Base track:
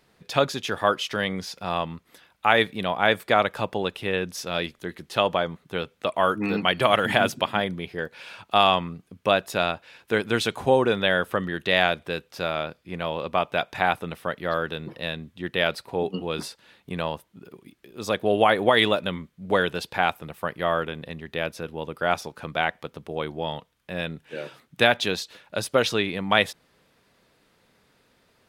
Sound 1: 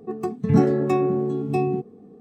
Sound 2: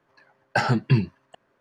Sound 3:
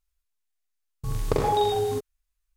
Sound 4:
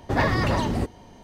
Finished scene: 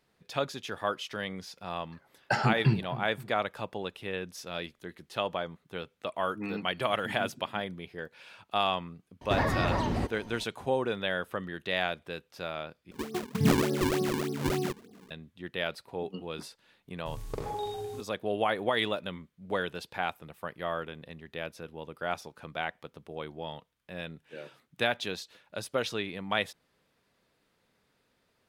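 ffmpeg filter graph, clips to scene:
-filter_complex "[0:a]volume=0.335[s0];[2:a]asplit=2[s1][s2];[s2]adelay=259,lowpass=f=1200:p=1,volume=0.178,asplit=2[s3][s4];[s4]adelay=259,lowpass=f=1200:p=1,volume=0.47,asplit=2[s5][s6];[s6]adelay=259,lowpass=f=1200:p=1,volume=0.47,asplit=2[s7][s8];[s8]adelay=259,lowpass=f=1200:p=1,volume=0.47[s9];[s1][s3][s5][s7][s9]amix=inputs=5:normalize=0[s10];[4:a]acrossover=split=670|1700|5500[s11][s12][s13][s14];[s11]acompressor=threshold=0.0447:ratio=3[s15];[s12]acompressor=threshold=0.0282:ratio=3[s16];[s13]acompressor=threshold=0.00794:ratio=3[s17];[s14]acompressor=threshold=0.00126:ratio=3[s18];[s15][s16][s17][s18]amix=inputs=4:normalize=0[s19];[1:a]acrusher=samples=39:mix=1:aa=0.000001:lfo=1:lforange=62.4:lforate=3.4[s20];[s0]asplit=2[s21][s22];[s21]atrim=end=12.914[s23];[s20]atrim=end=2.2,asetpts=PTS-STARTPTS,volume=0.447[s24];[s22]atrim=start=15.106[s25];[s10]atrim=end=1.6,asetpts=PTS-STARTPTS,volume=0.531,afade=t=in:d=0.004:c=hsin,afade=t=out:st=1.596:d=0.004:c=hsin,adelay=1750[s26];[s19]atrim=end=1.23,asetpts=PTS-STARTPTS,volume=0.891,afade=t=in:d=0.004:c=hsin,afade=t=out:st=1.226:d=0.004:c=hsin,adelay=9210[s27];[3:a]atrim=end=2.56,asetpts=PTS-STARTPTS,volume=0.237,afade=t=in:d=0.004:c=hsin,afade=t=out:st=2.556:d=0.004:c=hsin,adelay=16020[s28];[s23][s24]acrossfade=d=0.004:c1=hsin:c2=hsin[s29];[s29][s25]acrossfade=d=0.004:c1=hsin:c2=hsin[s30];[s30][s26][s27][s28]amix=inputs=4:normalize=0"

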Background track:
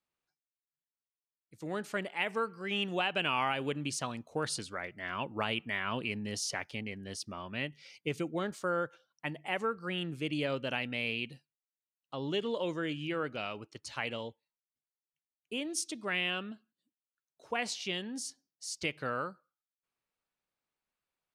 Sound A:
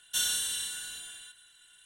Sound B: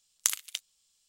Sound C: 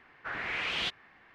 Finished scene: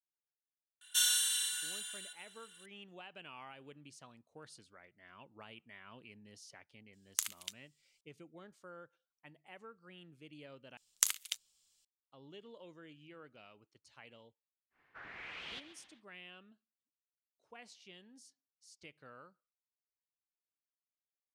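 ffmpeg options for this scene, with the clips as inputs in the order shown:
-filter_complex "[2:a]asplit=2[s0][s1];[0:a]volume=0.1[s2];[1:a]highpass=1000[s3];[3:a]asplit=7[s4][s5][s6][s7][s8][s9][s10];[s5]adelay=134,afreqshift=36,volume=0.2[s11];[s6]adelay=268,afreqshift=72,volume=0.116[s12];[s7]adelay=402,afreqshift=108,volume=0.0668[s13];[s8]adelay=536,afreqshift=144,volume=0.0389[s14];[s9]adelay=670,afreqshift=180,volume=0.0226[s15];[s10]adelay=804,afreqshift=216,volume=0.013[s16];[s4][s11][s12][s13][s14][s15][s16]amix=inputs=7:normalize=0[s17];[s2]asplit=2[s18][s19];[s18]atrim=end=10.774[s20];[s1]atrim=end=1.08,asetpts=PTS-STARTPTS,volume=0.708[s21];[s19]atrim=start=11.846[s22];[s3]atrim=end=1.85,asetpts=PTS-STARTPTS,volume=0.944,afade=t=in:d=0.004:c=hsin,afade=t=out:st=1.846:d=0.004:c=hsin,adelay=810[s23];[s0]atrim=end=1.08,asetpts=PTS-STARTPTS,volume=0.398,afade=t=in:d=0.004:c=hsin,afade=t=out:st=1.076:d=0.004:c=hsin,adelay=6930[s24];[s17]atrim=end=1.34,asetpts=PTS-STARTPTS,volume=0.2,afade=t=in:d=0.1,afade=t=out:st=1.24:d=0.1,adelay=14700[s25];[s20][s21]acrossfade=d=0.004:c1=hsin:c2=hsin[s26];[s26][s22]acrossfade=d=0.004:c1=hsin:c2=hsin[s27];[s27][s23][s24][s25]amix=inputs=4:normalize=0"

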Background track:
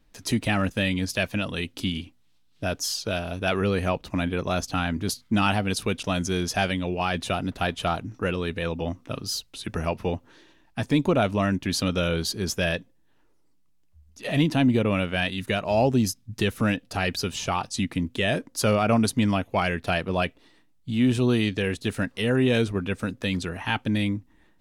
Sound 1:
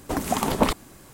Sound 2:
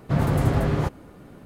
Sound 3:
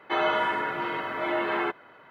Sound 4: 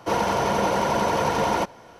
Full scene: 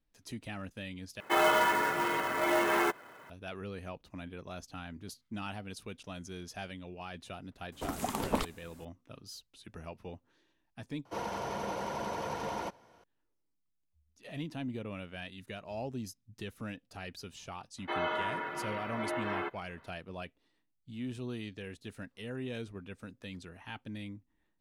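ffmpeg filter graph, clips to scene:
-filter_complex "[3:a]asplit=2[s0][s1];[0:a]volume=0.126[s2];[s0]acrusher=bits=3:mode=log:mix=0:aa=0.000001[s3];[s2]asplit=3[s4][s5][s6];[s4]atrim=end=1.204[s7];[s3]atrim=end=2.1,asetpts=PTS-STARTPTS,volume=0.891[s8];[s5]atrim=start=3.296:end=11.054[s9];[4:a]atrim=end=1.99,asetpts=PTS-STARTPTS,volume=0.188[s10];[s6]atrim=start=13.036[s11];[1:a]atrim=end=1.13,asetpts=PTS-STARTPTS,volume=0.299,afade=t=in:d=0.004:c=hsin,afade=t=out:st=1.126:d=0.004:c=hsin,adelay=7720[s12];[s1]atrim=end=2.1,asetpts=PTS-STARTPTS,volume=0.376,afade=t=in:d=0.004:c=hsin,afade=t=out:st=2.096:d=0.004:c=hsin,adelay=17780[s13];[s7][s8]acrossfade=d=0.004:c1=hsin:c2=hsin[s14];[s14][s9]acrossfade=d=0.004:c1=hsin:c2=hsin[s15];[s15][s10]acrossfade=d=0.004:c1=hsin:c2=hsin[s16];[s16][s11]acrossfade=d=0.004:c1=hsin:c2=hsin[s17];[s17][s12][s13]amix=inputs=3:normalize=0"

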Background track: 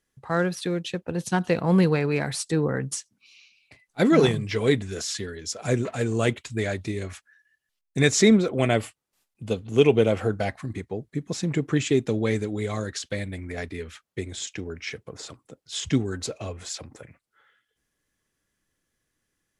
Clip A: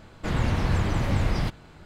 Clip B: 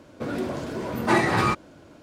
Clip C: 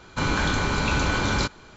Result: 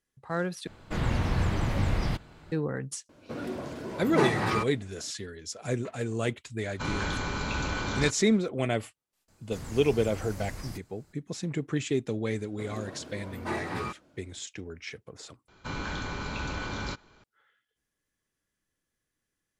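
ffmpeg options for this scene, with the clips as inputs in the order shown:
-filter_complex "[1:a]asplit=2[s0][s1];[2:a]asplit=2[s2][s3];[3:a]asplit=2[s4][s5];[0:a]volume=0.473[s6];[s1]aexciter=amount=7.6:drive=3.2:freq=4900[s7];[s5]lowpass=6800[s8];[s6]asplit=3[s9][s10][s11];[s9]atrim=end=0.674[s12];[s0]atrim=end=1.85,asetpts=PTS-STARTPTS,volume=0.708[s13];[s10]atrim=start=2.516:end=15.484[s14];[s8]atrim=end=1.76,asetpts=PTS-STARTPTS,volume=0.282[s15];[s11]atrim=start=17.236[s16];[s2]atrim=end=2.02,asetpts=PTS-STARTPTS,volume=0.473,afade=t=in:d=0.004:c=hsin,afade=t=out:st=2.016:d=0.004:c=hsin,adelay=136269S[s17];[s4]atrim=end=1.76,asetpts=PTS-STARTPTS,volume=0.398,afade=t=in:d=0.004:c=hsin,afade=t=out:st=1.756:d=0.004:c=hsin,adelay=6630[s18];[s7]atrim=end=1.85,asetpts=PTS-STARTPTS,volume=0.15,afade=t=in:d=0.004:c=hsin,afade=t=out:st=1.846:d=0.004:c=hsin,adelay=9280[s19];[s3]atrim=end=2.02,asetpts=PTS-STARTPTS,volume=0.224,afade=t=in:d=0.004:c=hsin,afade=t=out:st=2.016:d=0.004:c=hsin,adelay=12380[s20];[s12][s13]acrossfade=d=0.004:c1=hsin:c2=hsin[s21];[s21][s14]acrossfade=d=0.004:c1=hsin:c2=hsin[s22];[s22][s15]acrossfade=d=0.004:c1=hsin:c2=hsin[s23];[s23][s16]acrossfade=d=0.004:c1=hsin:c2=hsin[s24];[s24][s17][s18][s19][s20]amix=inputs=5:normalize=0"

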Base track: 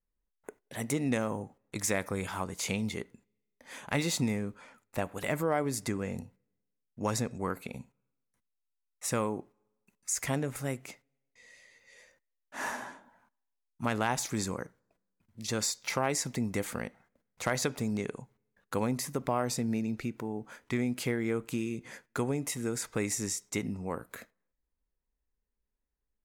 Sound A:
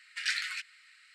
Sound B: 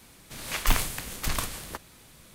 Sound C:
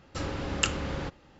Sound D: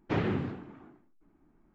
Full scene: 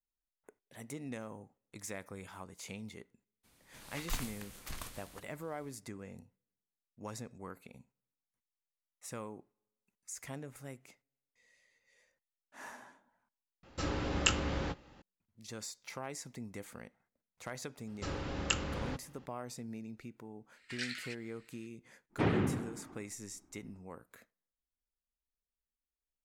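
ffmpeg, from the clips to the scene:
-filter_complex "[3:a]asplit=2[s0][s1];[0:a]volume=0.224[s2];[s0]asplit=2[s3][s4];[s4]adelay=17,volume=0.398[s5];[s3][s5]amix=inputs=2:normalize=0[s6];[s2]asplit=2[s7][s8];[s7]atrim=end=13.634[s9];[s6]atrim=end=1.39,asetpts=PTS-STARTPTS,volume=0.75[s10];[s8]atrim=start=15.016[s11];[2:a]atrim=end=2.34,asetpts=PTS-STARTPTS,volume=0.178,afade=t=in:d=0.02,afade=t=out:st=2.32:d=0.02,adelay=3430[s12];[s1]atrim=end=1.39,asetpts=PTS-STARTPTS,volume=0.531,afade=t=in:d=0.004:c=hsin,afade=t=out:st=1.386:d=0.004:c=hsin,adelay=17870[s13];[1:a]atrim=end=1.14,asetpts=PTS-STARTPTS,volume=0.355,afade=t=in:d=0.004:c=hsin,afade=t=out:st=1.136:d=0.004:c=hsin,adelay=20530[s14];[4:a]atrim=end=1.74,asetpts=PTS-STARTPTS,volume=0.891,afade=t=in:d=0.05,afade=t=out:st=1.69:d=0.05,adelay=22090[s15];[s9][s10]acrossfade=d=0.004:c1=hsin:c2=hsin[s16];[s16][s11]acrossfade=d=0.004:c1=hsin:c2=hsin[s17];[s17][s12][s13][s14][s15]amix=inputs=5:normalize=0"

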